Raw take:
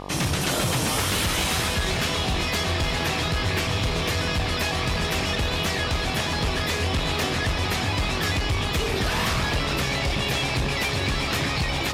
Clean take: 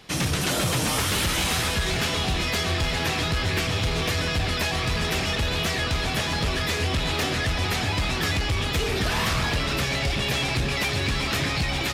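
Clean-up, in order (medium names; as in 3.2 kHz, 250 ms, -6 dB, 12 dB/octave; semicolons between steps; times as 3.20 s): de-hum 48.2 Hz, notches 25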